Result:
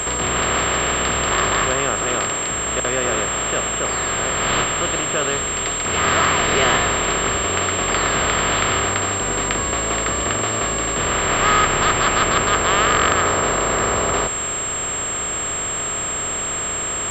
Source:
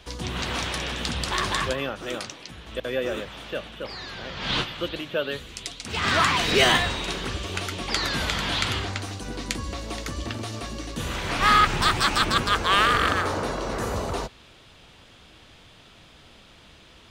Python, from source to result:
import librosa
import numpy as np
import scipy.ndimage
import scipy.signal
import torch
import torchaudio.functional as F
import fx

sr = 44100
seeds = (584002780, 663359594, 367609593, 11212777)

y = fx.bin_compress(x, sr, power=0.4)
y = fx.pwm(y, sr, carrier_hz=7500.0)
y = F.gain(torch.from_numpy(y), -2.0).numpy()